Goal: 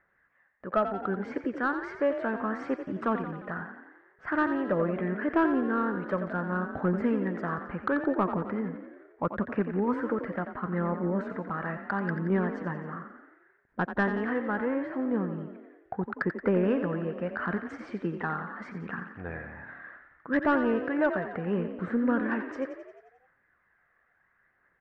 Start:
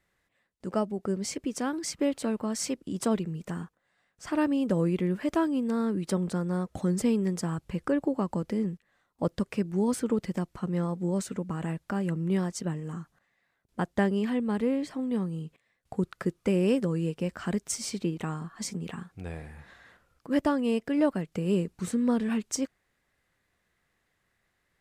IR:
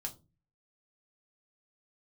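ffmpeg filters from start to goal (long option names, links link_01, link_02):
-filter_complex "[0:a]lowpass=frequency=1600:width_type=q:width=3.5,aphaser=in_gain=1:out_gain=1:delay=1.8:decay=0.35:speed=0.73:type=triangular,asplit=2[link_01][link_02];[link_02]highpass=frequency=720:poles=1,volume=12dB,asoftclip=type=tanh:threshold=-10dB[link_03];[link_01][link_03]amix=inputs=2:normalize=0,lowpass=frequency=1200:poles=1,volume=-6dB,asplit=8[link_04][link_05][link_06][link_07][link_08][link_09][link_10][link_11];[link_05]adelay=88,afreqshift=34,volume=-9.5dB[link_12];[link_06]adelay=176,afreqshift=68,volume=-13.9dB[link_13];[link_07]adelay=264,afreqshift=102,volume=-18.4dB[link_14];[link_08]adelay=352,afreqshift=136,volume=-22.8dB[link_15];[link_09]adelay=440,afreqshift=170,volume=-27.2dB[link_16];[link_10]adelay=528,afreqshift=204,volume=-31.7dB[link_17];[link_11]adelay=616,afreqshift=238,volume=-36.1dB[link_18];[link_04][link_12][link_13][link_14][link_15][link_16][link_17][link_18]amix=inputs=8:normalize=0,volume=-2.5dB"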